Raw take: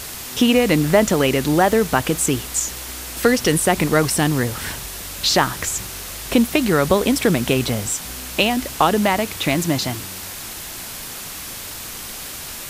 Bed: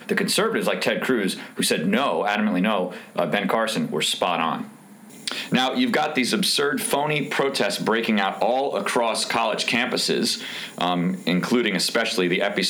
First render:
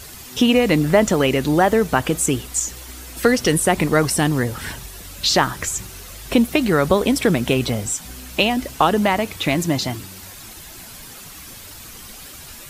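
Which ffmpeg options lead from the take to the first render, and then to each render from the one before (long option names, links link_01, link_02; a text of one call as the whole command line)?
ffmpeg -i in.wav -af "afftdn=noise_reduction=9:noise_floor=-33" out.wav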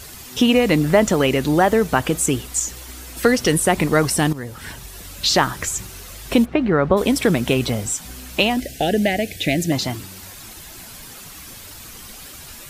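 ffmpeg -i in.wav -filter_complex "[0:a]asplit=3[link_01][link_02][link_03];[link_01]afade=type=out:start_time=6.44:duration=0.02[link_04];[link_02]lowpass=1800,afade=type=in:start_time=6.44:duration=0.02,afade=type=out:start_time=6.96:duration=0.02[link_05];[link_03]afade=type=in:start_time=6.96:duration=0.02[link_06];[link_04][link_05][link_06]amix=inputs=3:normalize=0,asettb=1/sr,asplit=3[link_07][link_08][link_09];[link_07]atrim=end=8.604[link_10];[link_08]atrim=start=8.6:end=9.72,asetpts=PTS-STARTPTS,afade=type=in:duration=0.004:curve=qsin,afade=type=out:start_time=1.116:duration=0.004:curve=qsin,asuperstop=centerf=1100:order=8:qfactor=1.3[link_11];[link_09]atrim=start=9.716[link_12];[link_10][link_11]acrossfade=duration=0.004:curve1=hsin:curve2=qsin[link_13];[link_13][link_12]acrossfade=duration=0.004:curve1=qsin:curve2=hsin,asplit=2[link_14][link_15];[link_14]atrim=end=4.33,asetpts=PTS-STARTPTS,afade=type=out:start_time=4.326:duration=0.004:curve=hsin:silence=0.211349[link_16];[link_15]atrim=start=4.33,asetpts=PTS-STARTPTS,afade=type=in:duration=0.67:silence=0.211349[link_17];[link_16][link_17]concat=n=2:v=0:a=1" out.wav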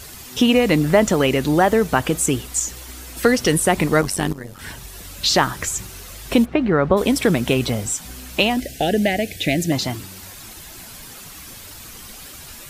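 ffmpeg -i in.wav -filter_complex "[0:a]asettb=1/sr,asplit=3[link_01][link_02][link_03];[link_01]atrim=end=4.014[link_04];[link_02]atrim=start=4.01:end=4.59,asetpts=PTS-STARTPTS,afade=type=in:duration=0.004:curve=qsin,afade=type=out:start_time=0.576:duration=0.004:curve=qsin,tremolo=f=95:d=0.824[link_05];[link_03]atrim=start=4.586[link_06];[link_04][link_05]acrossfade=duration=0.004:curve1=hsin:curve2=qsin[link_07];[link_07][link_06]acrossfade=duration=0.004:curve1=qsin:curve2=hsin" out.wav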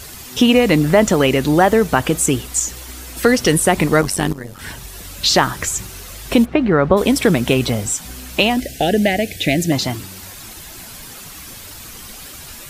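ffmpeg -i in.wav -af "volume=3dB,alimiter=limit=-1dB:level=0:latency=1" out.wav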